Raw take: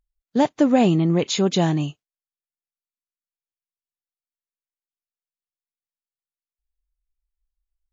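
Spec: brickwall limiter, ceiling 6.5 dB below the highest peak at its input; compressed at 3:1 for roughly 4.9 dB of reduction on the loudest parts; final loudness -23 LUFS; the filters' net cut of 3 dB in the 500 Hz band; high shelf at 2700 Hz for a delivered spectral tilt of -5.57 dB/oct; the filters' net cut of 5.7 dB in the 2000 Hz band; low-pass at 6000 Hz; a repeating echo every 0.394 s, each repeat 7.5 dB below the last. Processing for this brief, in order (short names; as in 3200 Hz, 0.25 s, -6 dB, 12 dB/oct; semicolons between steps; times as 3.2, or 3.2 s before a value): LPF 6000 Hz; bell 500 Hz -3.5 dB; bell 2000 Hz -5 dB; high shelf 2700 Hz -4.5 dB; compressor 3:1, threshold -20 dBFS; limiter -17.5 dBFS; feedback echo 0.394 s, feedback 42%, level -7.5 dB; gain +4 dB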